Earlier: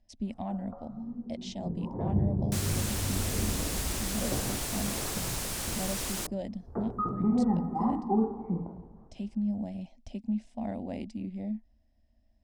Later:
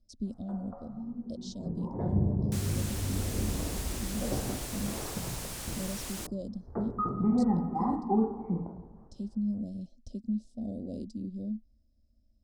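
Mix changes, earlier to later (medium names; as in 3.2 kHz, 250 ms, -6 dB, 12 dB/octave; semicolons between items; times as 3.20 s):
speech: add Chebyshev band-stop 510–4200 Hz, order 3; second sound -5.5 dB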